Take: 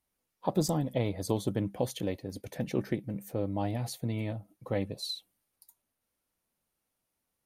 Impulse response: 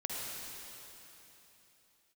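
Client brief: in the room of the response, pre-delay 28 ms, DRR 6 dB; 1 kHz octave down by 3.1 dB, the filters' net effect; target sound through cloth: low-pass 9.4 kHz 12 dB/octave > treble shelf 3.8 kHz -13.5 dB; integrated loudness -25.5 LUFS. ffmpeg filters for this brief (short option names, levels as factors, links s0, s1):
-filter_complex "[0:a]equalizer=f=1000:t=o:g=-3.5,asplit=2[s0][s1];[1:a]atrim=start_sample=2205,adelay=28[s2];[s1][s2]afir=irnorm=-1:irlink=0,volume=0.355[s3];[s0][s3]amix=inputs=2:normalize=0,lowpass=9400,highshelf=f=3800:g=-13.5,volume=2.51"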